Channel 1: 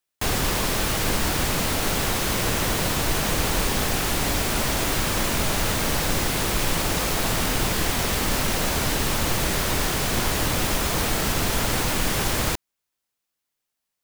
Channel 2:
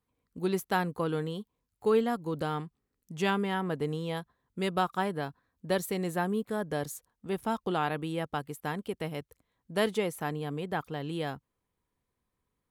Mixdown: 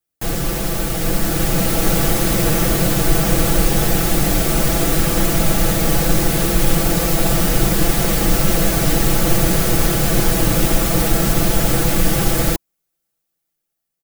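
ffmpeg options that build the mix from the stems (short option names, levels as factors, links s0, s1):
-filter_complex "[0:a]aecho=1:1:6:0.99,dynaudnorm=f=940:g=3:m=3.76,volume=1.19[s0];[1:a]volume=0.2[s1];[s0][s1]amix=inputs=2:normalize=0,equalizer=f=2900:w=0.31:g=-9,bandreject=f=980:w=7.2"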